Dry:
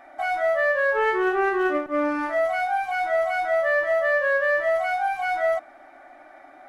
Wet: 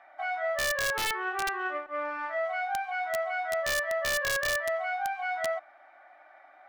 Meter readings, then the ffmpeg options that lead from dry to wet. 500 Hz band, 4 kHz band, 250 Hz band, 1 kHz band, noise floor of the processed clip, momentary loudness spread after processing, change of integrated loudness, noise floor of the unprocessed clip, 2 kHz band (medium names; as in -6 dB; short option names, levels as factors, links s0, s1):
-10.0 dB, +6.5 dB, -19.0 dB, -7.0 dB, -56 dBFS, 6 LU, -7.0 dB, -49 dBFS, -6.0 dB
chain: -filter_complex "[0:a]acrossover=split=580 4600:gain=0.0891 1 0.1[s0][s1][s2];[s0][s1][s2]amix=inputs=3:normalize=0,aeval=exprs='(mod(7.08*val(0)+1,2)-1)/7.08':c=same,volume=0.562"